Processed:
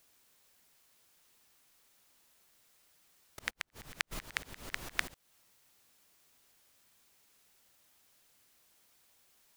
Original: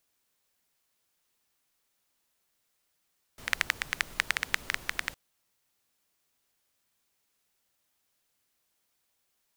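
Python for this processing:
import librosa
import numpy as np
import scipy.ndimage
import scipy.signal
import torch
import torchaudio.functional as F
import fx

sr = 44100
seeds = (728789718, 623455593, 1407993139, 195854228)

y = fx.auto_swell(x, sr, attack_ms=259.0)
y = fx.gate_flip(y, sr, shuts_db=-20.0, range_db=-39, at=(3.49, 4.11), fade=0.02)
y = y * 10.0 ** (8.5 / 20.0)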